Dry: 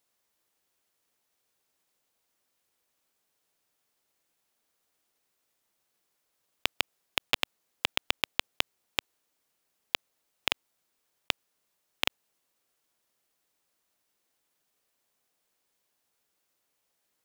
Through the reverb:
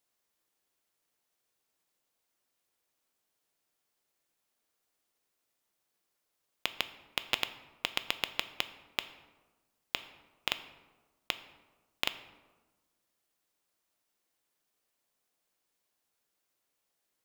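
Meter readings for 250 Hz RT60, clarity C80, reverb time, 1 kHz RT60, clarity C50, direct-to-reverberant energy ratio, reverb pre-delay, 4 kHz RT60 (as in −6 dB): 1.5 s, 15.0 dB, 1.3 s, 1.2 s, 13.5 dB, 10.5 dB, 3 ms, 0.70 s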